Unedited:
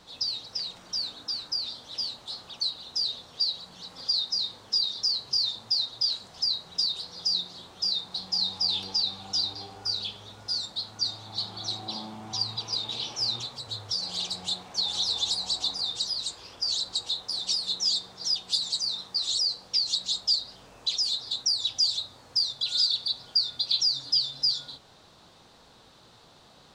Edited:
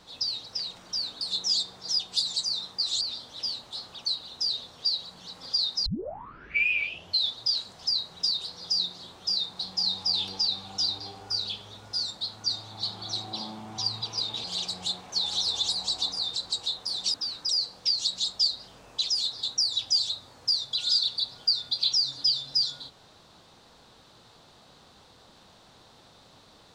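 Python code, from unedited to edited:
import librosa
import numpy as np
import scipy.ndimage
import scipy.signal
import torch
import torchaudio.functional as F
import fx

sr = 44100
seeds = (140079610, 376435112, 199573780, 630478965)

y = fx.edit(x, sr, fx.swap(start_s=1.21, length_s=0.35, other_s=17.57, other_length_s=1.8),
    fx.tape_start(start_s=4.41, length_s=1.53),
    fx.cut(start_s=12.99, length_s=1.07),
    fx.cut(start_s=15.98, length_s=0.81), tone=tone)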